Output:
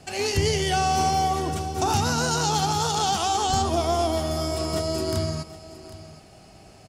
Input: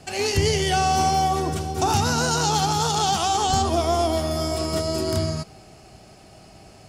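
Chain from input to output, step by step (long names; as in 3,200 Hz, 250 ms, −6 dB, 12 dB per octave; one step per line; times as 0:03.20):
single-tap delay 766 ms −17 dB
level −2 dB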